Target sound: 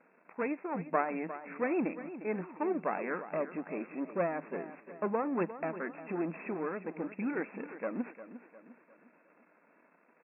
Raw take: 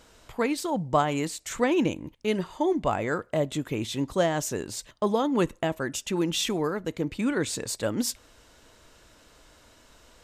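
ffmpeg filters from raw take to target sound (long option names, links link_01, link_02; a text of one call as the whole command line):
ffmpeg -i in.wav -af "aeval=exprs='if(lt(val(0),0),0.251*val(0),val(0))':channel_layout=same,aecho=1:1:354|708|1062|1416:0.224|0.0985|0.0433|0.0191,afftfilt=real='re*between(b*sr/4096,160,2700)':imag='im*between(b*sr/4096,160,2700)':win_size=4096:overlap=0.75,volume=-3.5dB" out.wav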